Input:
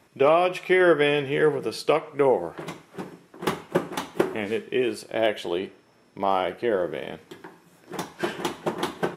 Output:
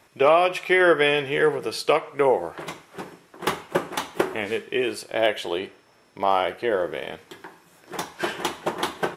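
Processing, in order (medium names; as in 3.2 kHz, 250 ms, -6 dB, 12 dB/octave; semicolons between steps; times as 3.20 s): peaking EQ 200 Hz -8 dB 2.2 oct; trim +4 dB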